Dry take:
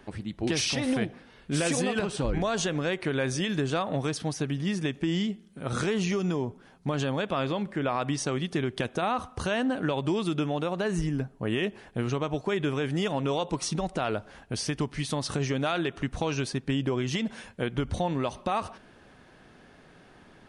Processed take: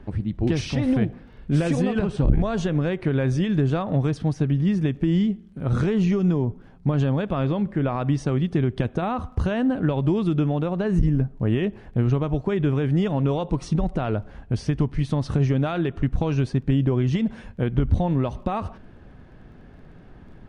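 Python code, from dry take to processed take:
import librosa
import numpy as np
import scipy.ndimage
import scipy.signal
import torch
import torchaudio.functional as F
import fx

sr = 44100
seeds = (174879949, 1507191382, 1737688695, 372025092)

y = fx.dmg_crackle(x, sr, seeds[0], per_s=22.0, level_db=-44.0)
y = fx.riaa(y, sr, side='playback')
y = fx.transformer_sat(y, sr, knee_hz=130.0)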